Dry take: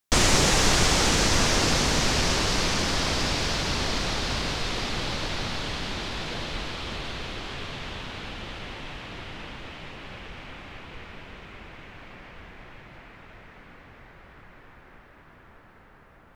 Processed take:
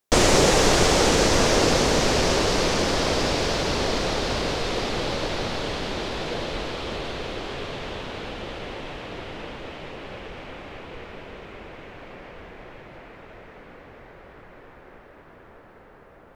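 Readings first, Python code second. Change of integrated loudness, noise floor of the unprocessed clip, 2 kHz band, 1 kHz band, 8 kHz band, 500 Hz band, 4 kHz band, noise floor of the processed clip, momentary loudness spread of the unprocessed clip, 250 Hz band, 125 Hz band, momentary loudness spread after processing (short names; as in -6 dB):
+2.0 dB, -53 dBFS, +1.0 dB, +3.5 dB, 0.0 dB, +8.5 dB, 0.0 dB, -49 dBFS, 22 LU, +4.0 dB, +1.0 dB, 22 LU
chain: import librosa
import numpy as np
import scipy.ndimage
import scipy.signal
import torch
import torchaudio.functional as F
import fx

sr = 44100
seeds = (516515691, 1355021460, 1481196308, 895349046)

y = fx.peak_eq(x, sr, hz=480.0, db=9.5, octaves=1.5)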